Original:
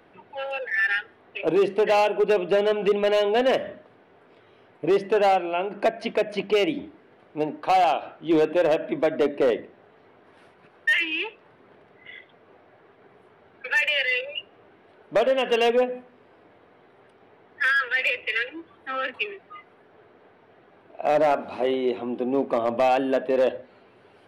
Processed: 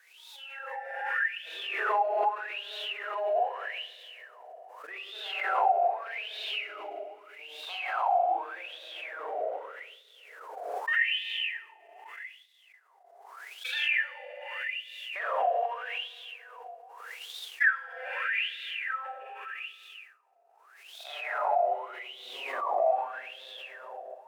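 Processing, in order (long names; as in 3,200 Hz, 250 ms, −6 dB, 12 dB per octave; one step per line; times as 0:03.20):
one scale factor per block 5 bits
high-pass filter 400 Hz 24 dB per octave
four-comb reverb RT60 2.4 s, combs from 33 ms, DRR −7.5 dB
brickwall limiter −9.5 dBFS, peak gain reduction 8 dB
background noise violet −35 dBFS
LFO wah 0.82 Hz 680–3,700 Hz, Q 15
downward expander −49 dBFS
background raised ahead of every attack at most 39 dB per second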